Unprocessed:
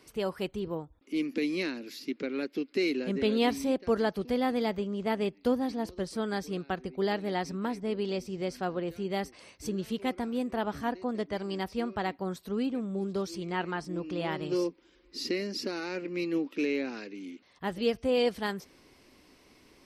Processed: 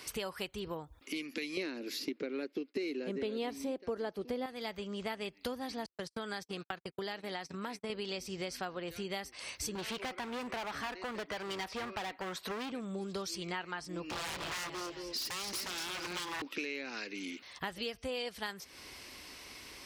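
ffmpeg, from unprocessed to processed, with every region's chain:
ffmpeg -i in.wav -filter_complex "[0:a]asettb=1/sr,asplit=3[link_01][link_02][link_03];[link_01]atrim=end=1.574[link_04];[link_02]atrim=start=1.57:end=4.46,asetpts=PTS-STARTPTS,afade=type=in:duration=0.004:curve=qsin,afade=type=out:start_time=2.886:duration=0.004:curve=qsin,agate=range=-33dB:threshold=-48dB:ratio=3:release=100:detection=peak,equalizer=frequency=360:width_type=o:width=2.5:gain=14[link_05];[link_03]atrim=start=4.456[link_06];[link_04][link_05]acrossfade=duration=0.004:curve1=hsin:curve2=qsin[link_07];[link_07][link_06]acrossfade=duration=0.004:curve1=qsin:curve2=hsin,asettb=1/sr,asplit=3[link_08][link_09][link_10];[link_08]atrim=end=5.864[link_11];[link_09]atrim=start=5.86:end=7.9,asetpts=PTS-STARTPTS,afade=type=in:duration=0.004:curve=qsin,afade=type=out:start_time=2.036:duration=0.004:curve=qsin,agate=range=-54dB:threshold=-38dB:ratio=16:release=100:detection=peak,highpass=99,acompressor=threshold=-35dB:ratio=2.5:attack=3.2:release=140:knee=1:detection=peak[link_12];[link_10]atrim=start=7.896[link_13];[link_11][link_12]acrossfade=duration=0.004:curve1=hsin:curve2=qsin[link_14];[link_14][link_13]acrossfade=duration=0.004:curve1=qsin:curve2=hsin,asettb=1/sr,asplit=3[link_15][link_16][link_17];[link_15]atrim=end=9.754[link_18];[link_16]atrim=start=9.75:end=12.72,asetpts=PTS-STARTPTS,afade=type=in:duration=0.004:curve=qsin,afade=type=out:start_time=2.966:duration=0.004:curve=qsin,asplit=2[link_19][link_20];[link_20]highpass=frequency=720:poles=1,volume=17dB,asoftclip=type=tanh:threshold=-18.5dB[link_21];[link_19][link_21]amix=inputs=2:normalize=0,lowpass=frequency=1500:poles=1,volume=-6dB,asoftclip=type=hard:threshold=-30.5dB[link_22];[link_17]atrim=start=12.716[link_23];[link_18][link_22]acrossfade=duration=0.004:curve1=hsin:curve2=qsin[link_24];[link_24][link_23]acrossfade=duration=0.004:curve1=qsin:curve2=hsin,asettb=1/sr,asplit=3[link_25][link_26][link_27];[link_25]atrim=end=14.064[link_28];[link_26]atrim=start=14.06:end=16.42,asetpts=PTS-STARTPTS,afade=type=in:duration=0.004:curve=qsin,afade=type=out:start_time=2.356:duration=0.004:curve=qsin,aecho=1:1:224|448|672|896:0.398|0.127|0.0408|0.013,atrim=end_sample=104076,aeval=exprs='0.02*(abs(mod(val(0)/0.02+3,4)-2)-1)':channel_layout=same[link_29];[link_27]atrim=start=16.416[link_30];[link_28][link_29]acrossfade=duration=0.004:curve1=hsin:curve2=qsin[link_31];[link_31][link_30]acrossfade=duration=0.004:curve1=qsin:curve2=hsin,highpass=50,equalizer=frequency=240:width=0.32:gain=-13.5,acompressor=threshold=-51dB:ratio=6,volume=14dB" out.wav

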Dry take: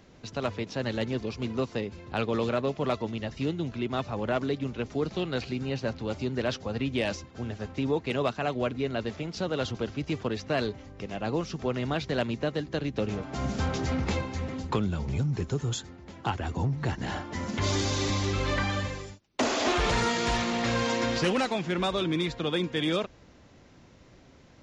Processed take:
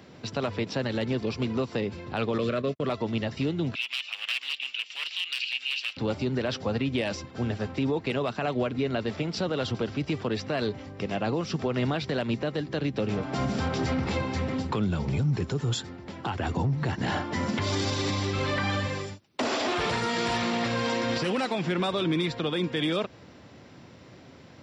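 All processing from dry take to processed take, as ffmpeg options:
ffmpeg -i in.wav -filter_complex "[0:a]asettb=1/sr,asplit=3[link_01][link_02][link_03];[link_01]atrim=end=2.384[link_04];[link_02]atrim=start=2.38:end=2.88,asetpts=PTS-STARTPTS,afade=type=in:duration=0.004:curve=qsin,afade=type=out:start_time=0.496:duration=0.004:curve=qsin,asuperstop=centerf=850:order=4:qfactor=2.3,agate=range=-56dB:threshold=-34dB:ratio=16:release=100:detection=peak[link_05];[link_03]atrim=start=2.876[link_06];[link_04][link_05]acrossfade=duration=0.004:curve1=hsin:curve2=qsin[link_07];[link_07][link_06]acrossfade=duration=0.004:curve1=qsin:curve2=hsin,asettb=1/sr,asplit=3[link_08][link_09][link_10];[link_08]atrim=end=3.754[link_11];[link_09]atrim=start=3.75:end=5.97,asetpts=PTS-STARTPTS,afade=type=in:duration=0.004:curve=qsin,afade=type=out:start_time=2.216:duration=0.004:curve=qsin,aeval=exprs='0.0447*(abs(mod(val(0)/0.0447+3,4)-2)-1)':channel_layout=same,highpass=frequency=2800:width_type=q:width=6.8[link_12];[link_10]atrim=start=5.966[link_13];[link_11][link_12]acrossfade=duration=0.004:curve1=hsin:curve2=qsin[link_14];[link_14][link_13]acrossfade=duration=0.004:curve1=qsin:curve2=hsin,highpass=frequency=86:width=0.5412,highpass=frequency=86:width=1.3066,bandreject=frequency=6500:width=5.6,alimiter=level_in=1dB:limit=-24dB:level=0:latency=1:release=119,volume=-1dB,volume=6dB" out.wav

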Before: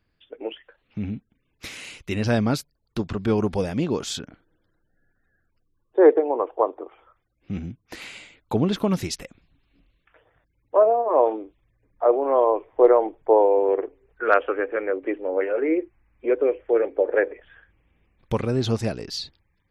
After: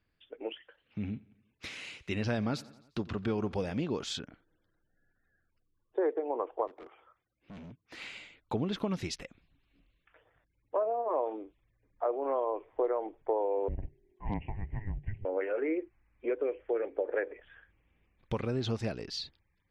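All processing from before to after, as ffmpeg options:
ffmpeg -i in.wav -filter_complex "[0:a]asettb=1/sr,asplit=3[link_01][link_02][link_03];[link_01]atrim=end=0.514[link_04];[link_02]atrim=start=0.51:end=3.81,asetpts=PTS-STARTPTS,afade=type=in:duration=0.004:curve=qsin,afade=type=out:start_time=3.296:duration=0.004:curve=qsin,highpass=49,aecho=1:1:88|176|264|352:0.075|0.0427|0.0244|0.0139,atrim=end_sample=145530[link_05];[link_03]atrim=start=3.806[link_06];[link_04][link_05]acrossfade=duration=0.004:curve1=hsin:curve2=qsin[link_07];[link_07][link_06]acrossfade=duration=0.004:curve1=qsin:curve2=hsin,asettb=1/sr,asplit=3[link_08][link_09][link_10];[link_08]atrim=end=6.674[link_11];[link_09]atrim=start=6.67:end=7.98,asetpts=PTS-STARTPTS,afade=type=in:duration=0.004:curve=qsin,afade=type=out:start_time=1.306:duration=0.004:curve=qsin,highpass=frequency=110:poles=1,asoftclip=type=hard:threshold=-38.5dB[link_12];[link_10]atrim=start=7.976[link_13];[link_11][link_12]acrossfade=duration=0.004:curve1=hsin:curve2=qsin[link_14];[link_14][link_13]acrossfade=duration=0.004:curve1=qsin:curve2=hsin,asettb=1/sr,asplit=3[link_15][link_16][link_17];[link_15]atrim=end=13.684[link_18];[link_16]atrim=start=13.68:end=15.25,asetpts=PTS-STARTPTS,afade=type=in:duration=0.004:curve=qsin,afade=type=out:start_time=1.566:duration=0.004:curve=qsin,asuperstop=centerf=1700:order=4:qfactor=1.4,acompressor=threshold=-23dB:ratio=2.5:attack=3.2:release=140:knee=1:detection=peak,afreqshift=-420[link_19];[link_17]atrim=start=15.246[link_20];[link_18][link_19]acrossfade=duration=0.004:curve1=hsin:curve2=qsin[link_21];[link_21][link_20]acrossfade=duration=0.004:curve1=qsin:curve2=hsin,lowpass=3100,aemphasis=mode=production:type=75fm,acompressor=threshold=-22dB:ratio=4,volume=-6dB" out.wav

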